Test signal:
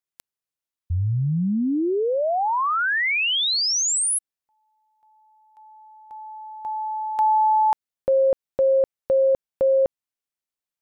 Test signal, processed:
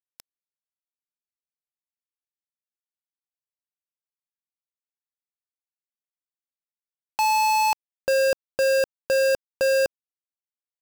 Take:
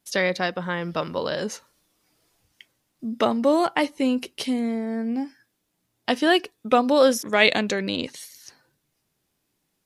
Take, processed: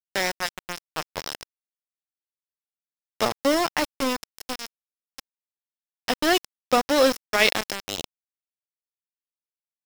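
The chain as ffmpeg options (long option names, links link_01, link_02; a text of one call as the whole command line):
ffmpeg -i in.wav -af "aeval=exprs='val(0)*gte(abs(val(0)),0.119)':channel_layout=same,equalizer=frequency=5300:width=6.9:gain=10.5,volume=-1.5dB" out.wav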